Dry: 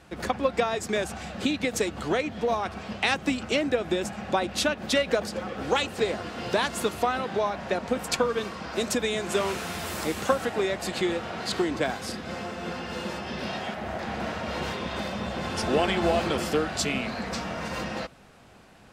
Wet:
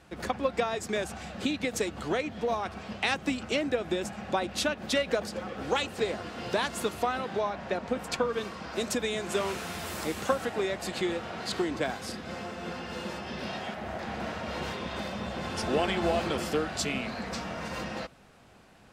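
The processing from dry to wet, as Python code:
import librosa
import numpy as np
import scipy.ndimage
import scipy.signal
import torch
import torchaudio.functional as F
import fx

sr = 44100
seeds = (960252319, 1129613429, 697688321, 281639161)

y = fx.high_shelf(x, sr, hz=fx.line((7.4, 7900.0), (8.32, 4800.0)), db=-7.0, at=(7.4, 8.32), fade=0.02)
y = F.gain(torch.from_numpy(y), -3.5).numpy()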